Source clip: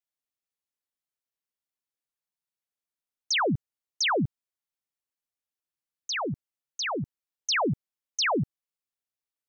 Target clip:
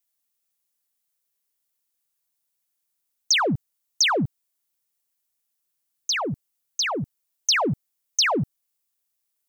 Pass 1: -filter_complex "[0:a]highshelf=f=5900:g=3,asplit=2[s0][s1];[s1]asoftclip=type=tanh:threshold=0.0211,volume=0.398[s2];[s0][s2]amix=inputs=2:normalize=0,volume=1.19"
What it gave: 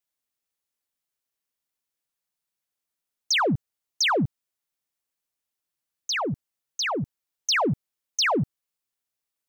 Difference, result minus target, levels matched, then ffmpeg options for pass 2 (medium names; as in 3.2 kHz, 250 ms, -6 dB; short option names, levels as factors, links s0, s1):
8 kHz band -3.0 dB
-filter_complex "[0:a]highshelf=f=5900:g=13.5,asplit=2[s0][s1];[s1]asoftclip=type=tanh:threshold=0.0211,volume=0.398[s2];[s0][s2]amix=inputs=2:normalize=0,volume=1.19"